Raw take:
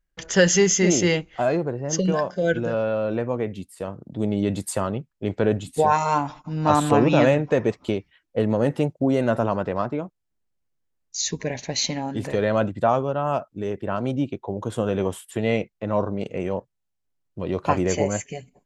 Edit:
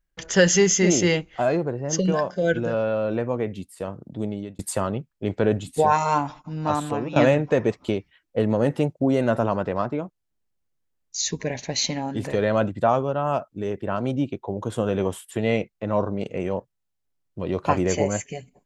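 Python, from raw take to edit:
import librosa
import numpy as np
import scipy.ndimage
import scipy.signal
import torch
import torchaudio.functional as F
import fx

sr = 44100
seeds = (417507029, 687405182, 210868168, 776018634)

y = fx.edit(x, sr, fx.fade_out_span(start_s=4.06, length_s=0.53),
    fx.fade_out_to(start_s=6.18, length_s=0.98, floor_db=-15.0), tone=tone)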